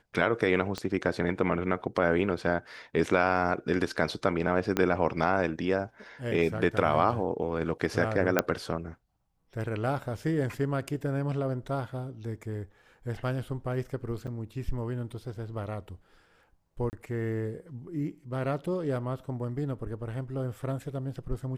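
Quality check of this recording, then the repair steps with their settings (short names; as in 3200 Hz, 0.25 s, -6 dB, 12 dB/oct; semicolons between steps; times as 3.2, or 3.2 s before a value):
0.78 pop -19 dBFS
4.77 pop -12 dBFS
8.39 pop -8 dBFS
14.27–14.28 gap 6.8 ms
16.9–16.93 gap 29 ms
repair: de-click; interpolate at 14.27, 6.8 ms; interpolate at 16.9, 29 ms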